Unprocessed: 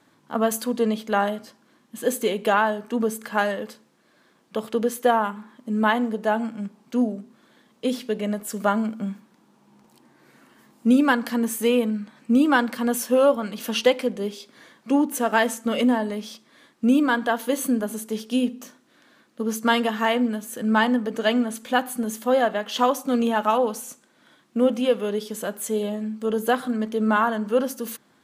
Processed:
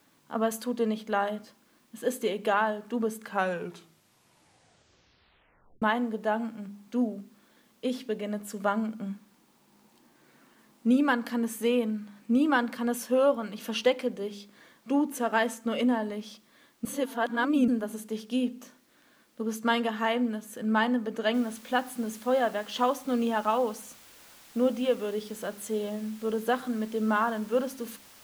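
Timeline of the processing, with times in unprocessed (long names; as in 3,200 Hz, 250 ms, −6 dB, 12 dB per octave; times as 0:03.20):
0:03.22: tape stop 2.60 s
0:16.85–0:17.68: reverse
0:21.34: noise floor change −60 dB −45 dB
whole clip: high-shelf EQ 6,400 Hz −5.5 dB; hum removal 67.63 Hz, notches 5; level −5.5 dB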